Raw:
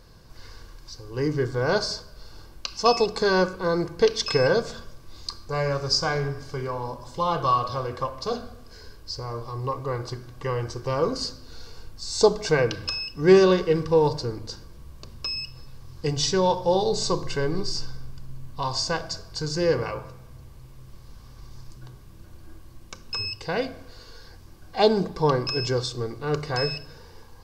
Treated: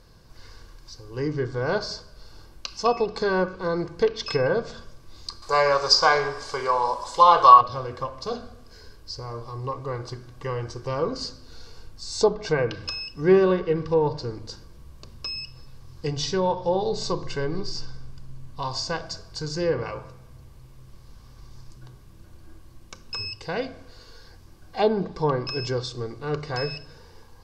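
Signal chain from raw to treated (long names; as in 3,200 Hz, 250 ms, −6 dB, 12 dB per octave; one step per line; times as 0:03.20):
treble cut that deepens with the level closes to 2,300 Hz, closed at −16 dBFS
0:05.42–0:07.61: graphic EQ with 10 bands 125 Hz −10 dB, 250 Hz −4 dB, 500 Hz +6 dB, 1,000 Hz +12 dB, 2,000 Hz +5 dB, 4,000 Hz +8 dB, 8,000 Hz +12 dB
level −2 dB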